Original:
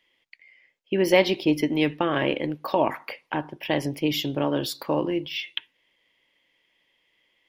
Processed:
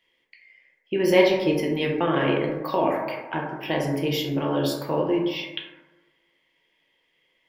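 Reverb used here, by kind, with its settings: plate-style reverb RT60 1.2 s, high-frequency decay 0.3×, DRR -1.5 dB; gain -3 dB

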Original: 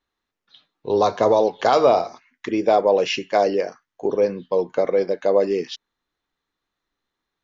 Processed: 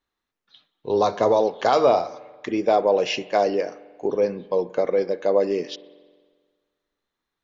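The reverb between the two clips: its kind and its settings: spring tank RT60 1.6 s, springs 44 ms, chirp 25 ms, DRR 18 dB; gain -2 dB

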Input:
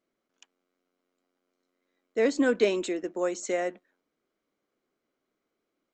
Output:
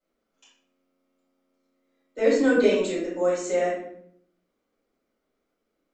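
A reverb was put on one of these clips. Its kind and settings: shoebox room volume 110 m³, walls mixed, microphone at 4.9 m; gain -12 dB

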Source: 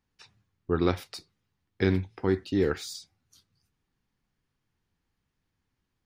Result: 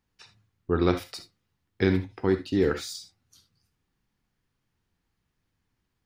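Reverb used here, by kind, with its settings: non-linear reverb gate 90 ms rising, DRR 9.5 dB; gain +1.5 dB

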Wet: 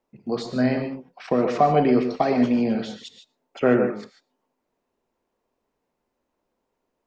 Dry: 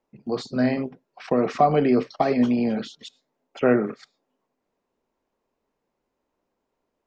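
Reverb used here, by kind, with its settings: non-linear reverb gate 0.17 s rising, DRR 6.5 dB

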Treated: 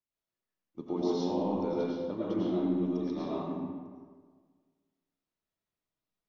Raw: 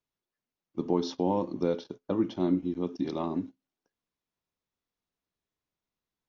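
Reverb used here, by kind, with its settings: digital reverb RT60 1.6 s, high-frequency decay 0.6×, pre-delay 65 ms, DRR -7.5 dB; gain -10 dB

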